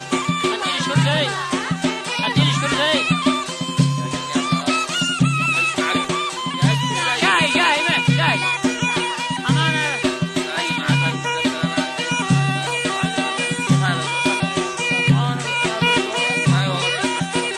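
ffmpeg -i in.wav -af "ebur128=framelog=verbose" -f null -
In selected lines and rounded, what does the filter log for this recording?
Integrated loudness:
  I:         -18.6 LUFS
  Threshold: -28.6 LUFS
Loudness range:
  LRA:         2.5 LU
  Threshold: -38.6 LUFS
  LRA low:   -19.7 LUFS
  LRA high:  -17.2 LUFS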